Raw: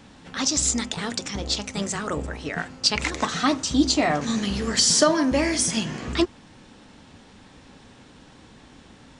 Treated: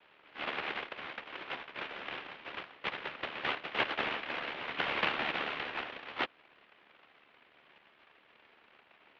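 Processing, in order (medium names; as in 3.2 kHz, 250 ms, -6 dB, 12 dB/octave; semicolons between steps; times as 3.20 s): AM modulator 74 Hz, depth 95%; noise-vocoded speech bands 1; mistuned SSB -320 Hz 580–3300 Hz; trim -5 dB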